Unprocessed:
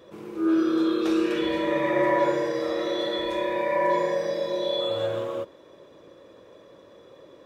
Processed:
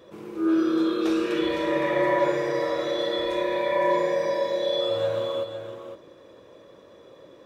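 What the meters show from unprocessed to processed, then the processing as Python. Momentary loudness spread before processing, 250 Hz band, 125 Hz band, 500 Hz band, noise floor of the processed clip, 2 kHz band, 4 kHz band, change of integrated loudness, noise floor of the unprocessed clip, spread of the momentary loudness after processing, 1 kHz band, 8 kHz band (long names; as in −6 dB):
6 LU, −0.5 dB, +0.5 dB, +1.0 dB, −50 dBFS, +0.5 dB, +0.5 dB, +0.5 dB, −52 dBFS, 9 LU, 0.0 dB, can't be measured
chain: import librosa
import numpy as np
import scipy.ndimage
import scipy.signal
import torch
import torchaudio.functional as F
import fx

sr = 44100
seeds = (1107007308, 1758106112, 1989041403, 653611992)

y = x + 10.0 ** (-8.5 / 20.0) * np.pad(x, (int(511 * sr / 1000.0), 0))[:len(x)]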